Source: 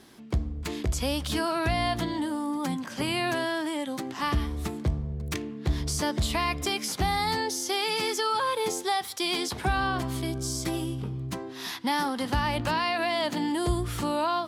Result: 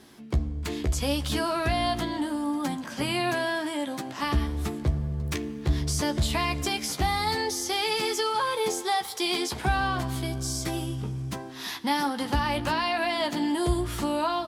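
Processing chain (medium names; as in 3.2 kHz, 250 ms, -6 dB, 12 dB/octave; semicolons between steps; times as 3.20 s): doubling 14 ms -8 dB; reverberation RT60 4.7 s, pre-delay 5 ms, DRR 16.5 dB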